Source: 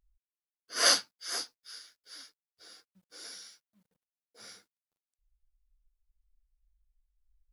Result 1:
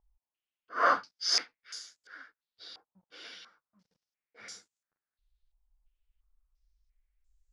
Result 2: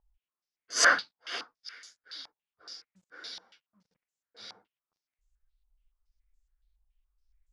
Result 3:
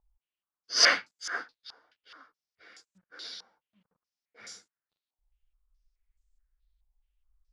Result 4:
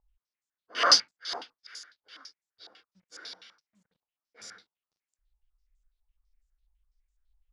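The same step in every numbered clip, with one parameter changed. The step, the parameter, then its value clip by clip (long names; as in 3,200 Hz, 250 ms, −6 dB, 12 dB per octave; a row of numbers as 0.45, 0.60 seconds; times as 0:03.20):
low-pass on a step sequencer, speed: 2.9, 7.1, 4.7, 12 Hertz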